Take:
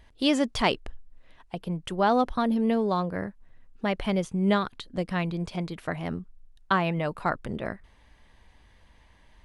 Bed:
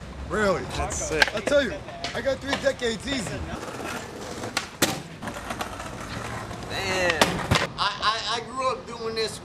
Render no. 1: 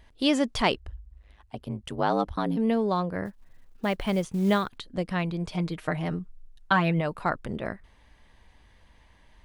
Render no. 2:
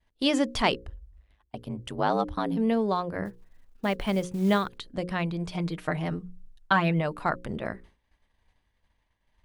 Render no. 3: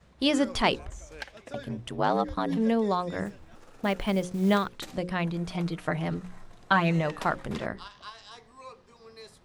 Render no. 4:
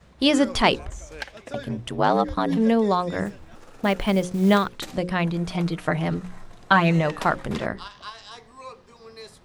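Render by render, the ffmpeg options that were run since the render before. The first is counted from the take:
-filter_complex "[0:a]asplit=3[s0][s1][s2];[s0]afade=t=out:st=0.76:d=0.02[s3];[s1]aeval=exprs='val(0)*sin(2*PI*51*n/s)':c=same,afade=t=in:st=0.76:d=0.02,afade=t=out:st=2.56:d=0.02[s4];[s2]afade=t=in:st=2.56:d=0.02[s5];[s3][s4][s5]amix=inputs=3:normalize=0,asettb=1/sr,asplit=3[s6][s7][s8];[s6]atrim=end=3.254[s9];[s7]atrim=start=3.25:end=4.78,asetpts=PTS-STARTPTS,afade=t=in:d=0.004:c=qsin,afade=t=out:st=1.526:d=0.004:c=qsin,acrusher=bits=7:mode=log:mix=0:aa=0.000001[s10];[s8]atrim=start=4.776[s11];[s9][s10]acrossfade=d=0.004:c1=hsin:c2=qsin[s12];[s12][s11]acrossfade=d=0.004:c1=qsin:c2=hsin,asettb=1/sr,asplit=3[s13][s14][s15];[s13]atrim=end=5.484[s16];[s14]atrim=start=5.48:end=7.01,asetpts=PTS-STARTPTS,afade=t=in:d=0.004:c=qsin,afade=t=out:st=1.526:d=0.004:c=qsin,aecho=1:1:6.5:0.65,atrim=end_sample=67473[s17];[s15]atrim=start=7.006[s18];[s16][s17]acrossfade=d=0.004:c1=hsin:c2=qsin[s19];[s19][s18]acrossfade=d=0.004:c1=qsin:c2=hsin"
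-af "agate=range=0.0224:threshold=0.00562:ratio=3:detection=peak,bandreject=f=60:t=h:w=6,bandreject=f=120:t=h:w=6,bandreject=f=180:t=h:w=6,bandreject=f=240:t=h:w=6,bandreject=f=300:t=h:w=6,bandreject=f=360:t=h:w=6,bandreject=f=420:t=h:w=6,bandreject=f=480:t=h:w=6,bandreject=f=540:t=h:w=6"
-filter_complex "[1:a]volume=0.0944[s0];[0:a][s0]amix=inputs=2:normalize=0"
-af "volume=1.88"

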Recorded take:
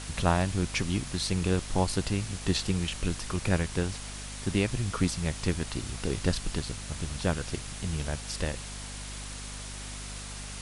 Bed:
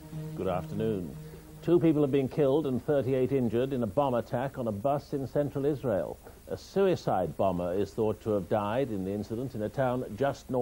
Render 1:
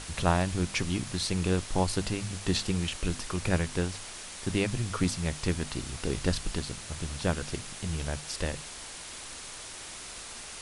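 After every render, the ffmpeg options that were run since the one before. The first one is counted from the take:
-af "bandreject=f=50:t=h:w=6,bandreject=f=100:t=h:w=6,bandreject=f=150:t=h:w=6,bandreject=f=200:t=h:w=6,bandreject=f=250:t=h:w=6"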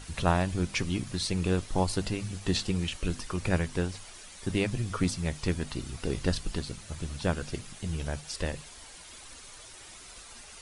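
-af "afftdn=nr=9:nf=-43"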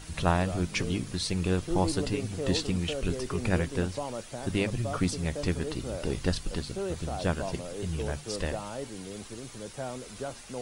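-filter_complex "[1:a]volume=0.376[s0];[0:a][s0]amix=inputs=2:normalize=0"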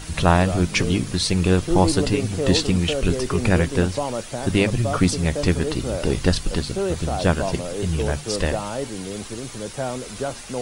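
-af "volume=2.99,alimiter=limit=0.708:level=0:latency=1"

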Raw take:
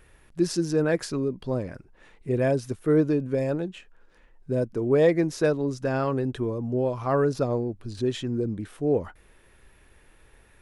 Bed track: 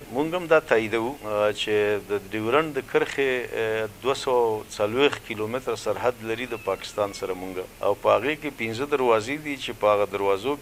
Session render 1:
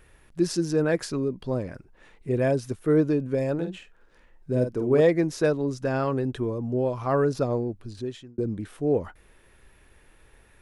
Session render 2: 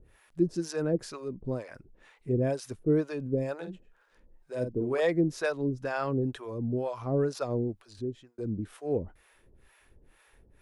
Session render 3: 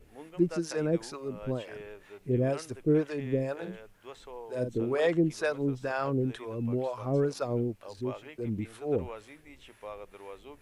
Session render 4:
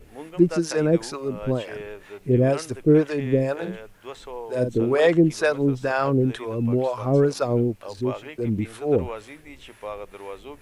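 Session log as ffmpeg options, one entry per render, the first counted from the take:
-filter_complex "[0:a]asettb=1/sr,asplit=3[s0][s1][s2];[s0]atrim=end=3.544[s3];[s1]atrim=start=3.54:end=5.01,asetpts=PTS-STARTPTS,afade=t=in:d=0.004:c=qsin,afade=t=out:st=1.466:d=0.004:c=qsin,asplit=2[s4][s5];[s5]adelay=48,volume=0.447[s6];[s4][s6]amix=inputs=2:normalize=0,atrim=end_sample=64827[s7];[s2]atrim=start=5.006[s8];[s3][s7]acrossfade=d=0.004:c1=hsin:c2=qsin[s9];[s9][s8]acrossfade=d=0.004:c1=qsin:c2=hsin,asplit=2[s10][s11];[s10]atrim=end=8.38,asetpts=PTS-STARTPTS,afade=t=out:st=7.7:d=0.68[s12];[s11]atrim=start=8.38,asetpts=PTS-STARTPTS,afade=t=in:d=0.004:c=hsin[s13];[s12][s13]concat=n=2:v=0:a=1"
-filter_complex "[0:a]acrossover=split=550[s0][s1];[s0]aeval=exprs='val(0)*(1-1/2+1/2*cos(2*PI*2.1*n/s))':c=same[s2];[s1]aeval=exprs='val(0)*(1-1/2-1/2*cos(2*PI*2.1*n/s))':c=same[s3];[s2][s3]amix=inputs=2:normalize=0"
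-filter_complex "[1:a]volume=0.075[s0];[0:a][s0]amix=inputs=2:normalize=0"
-af "volume=2.66"

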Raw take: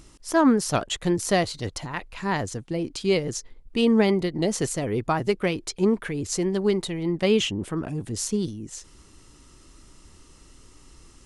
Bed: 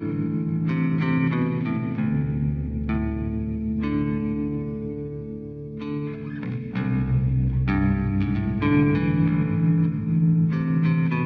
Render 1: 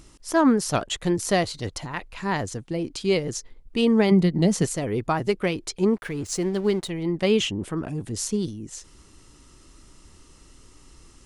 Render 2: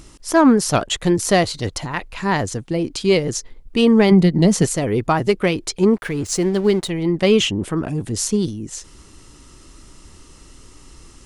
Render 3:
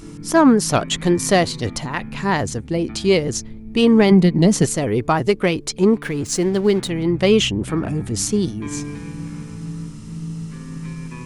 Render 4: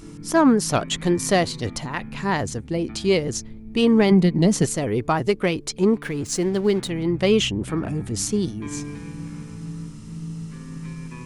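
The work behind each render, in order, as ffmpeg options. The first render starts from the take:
-filter_complex "[0:a]asettb=1/sr,asplit=3[s0][s1][s2];[s0]atrim=end=4.114[s3];[s1]atrim=start=4.11:end=4.65,asetpts=PTS-STARTPTS,afade=t=in:d=0.004:c=qsin,afade=t=out:st=0.536:d=0.004:c=qsin,equalizer=f=180:w=2.3:g=10.5[s4];[s2]atrim=start=4.646[s5];[s3][s4]acrossfade=d=0.004:c1=hsin:c2=qsin[s6];[s6][s5]acrossfade=d=0.004:c1=qsin:c2=hsin,asettb=1/sr,asplit=3[s7][s8][s9];[s7]atrim=end=5.964[s10];[s8]atrim=start=5.96:end=6.9,asetpts=PTS-STARTPTS,afade=t=in:d=0.004:c=qsin,afade=t=out:st=0.936:d=0.004:c=qsin,aeval=exprs='sgn(val(0))*max(abs(val(0))-0.00473,0)':c=same[s11];[s9]atrim=start=6.896[s12];[s10][s11]acrossfade=d=0.004:c1=hsin:c2=qsin[s13];[s13][s12]acrossfade=d=0.004:c1=qsin:c2=hsin"
-af "acontrast=73"
-filter_complex "[1:a]volume=0.316[s0];[0:a][s0]amix=inputs=2:normalize=0"
-af "volume=0.668"

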